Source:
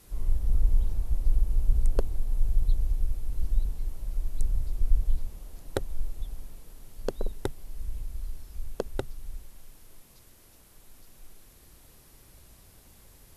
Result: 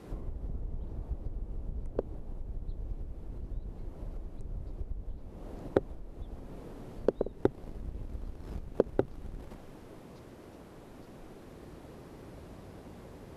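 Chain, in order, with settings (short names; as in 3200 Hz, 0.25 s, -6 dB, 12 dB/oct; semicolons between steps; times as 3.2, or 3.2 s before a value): 7.37–9.55 G.711 law mismatch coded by mu; compressor 3:1, threshold -37 dBFS, peak gain reduction 17.5 dB; band-pass 340 Hz, Q 0.64; gain +15 dB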